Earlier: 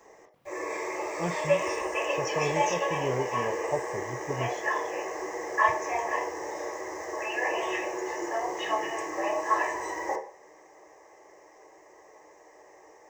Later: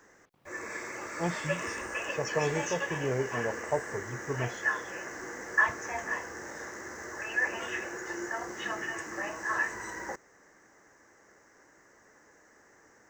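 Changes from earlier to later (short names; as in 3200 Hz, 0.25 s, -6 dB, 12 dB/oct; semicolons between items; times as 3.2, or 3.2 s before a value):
background: remove fixed phaser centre 590 Hz, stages 4; reverb: off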